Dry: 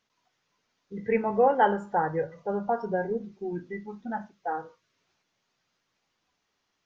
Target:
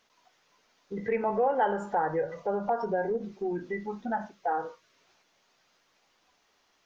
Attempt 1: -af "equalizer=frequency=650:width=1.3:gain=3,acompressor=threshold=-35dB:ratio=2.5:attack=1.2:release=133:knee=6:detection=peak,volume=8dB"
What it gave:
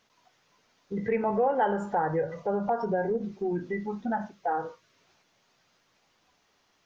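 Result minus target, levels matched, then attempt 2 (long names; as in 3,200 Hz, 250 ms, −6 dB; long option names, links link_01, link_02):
125 Hz band +4.5 dB
-af "equalizer=frequency=650:width=1.3:gain=3,acompressor=threshold=-35dB:ratio=2.5:attack=1.2:release=133:knee=6:detection=peak,equalizer=frequency=120:width=0.76:gain=-8,volume=8dB"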